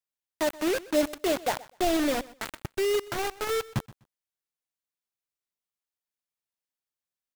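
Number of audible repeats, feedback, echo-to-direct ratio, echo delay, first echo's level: 2, 19%, −20.0 dB, 125 ms, −20.0 dB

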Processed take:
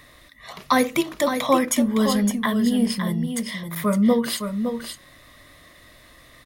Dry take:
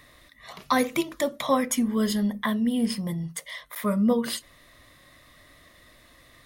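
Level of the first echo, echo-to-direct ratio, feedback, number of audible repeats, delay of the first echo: −7.5 dB, −7.5 dB, repeats not evenly spaced, 1, 562 ms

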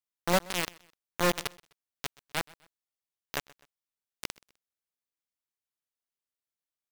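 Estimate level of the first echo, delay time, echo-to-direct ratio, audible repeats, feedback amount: −23.5 dB, 127 ms, −23.0 dB, 2, 38%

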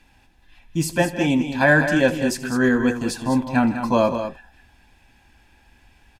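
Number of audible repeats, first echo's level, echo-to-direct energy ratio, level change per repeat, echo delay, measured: 3, −18.5 dB, −8.0 dB, repeats not evenly spaced, 78 ms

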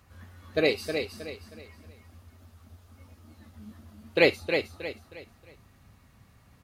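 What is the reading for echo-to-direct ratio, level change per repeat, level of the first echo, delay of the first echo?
−6.0 dB, −9.5 dB, −6.5 dB, 315 ms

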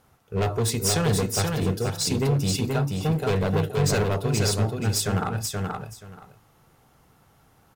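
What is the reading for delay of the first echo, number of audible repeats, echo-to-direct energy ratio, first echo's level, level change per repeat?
478 ms, 2, −3.5 dB, −3.5 dB, −15.0 dB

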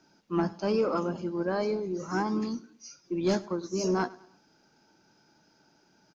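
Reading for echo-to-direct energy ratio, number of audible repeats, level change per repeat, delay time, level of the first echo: −20.0 dB, 2, −8.0 dB, 104 ms, −21.0 dB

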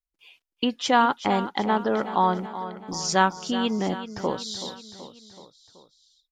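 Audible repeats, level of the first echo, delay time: 4, −12.5 dB, 378 ms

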